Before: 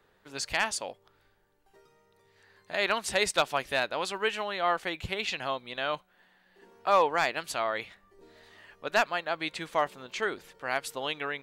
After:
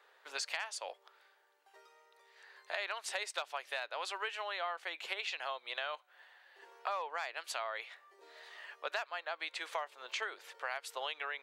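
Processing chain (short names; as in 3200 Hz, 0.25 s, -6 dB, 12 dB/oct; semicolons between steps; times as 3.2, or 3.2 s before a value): Bessel high-pass 720 Hz, order 6; high shelf 7300 Hz -8 dB; compressor 8:1, threshold -40 dBFS, peak gain reduction 18.5 dB; gain +4.5 dB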